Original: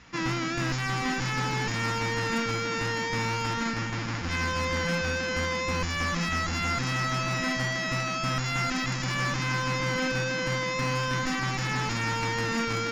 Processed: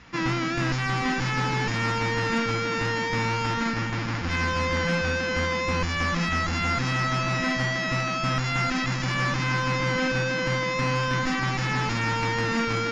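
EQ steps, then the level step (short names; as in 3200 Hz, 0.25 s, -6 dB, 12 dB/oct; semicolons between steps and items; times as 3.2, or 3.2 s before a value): air absorption 74 m; +3.5 dB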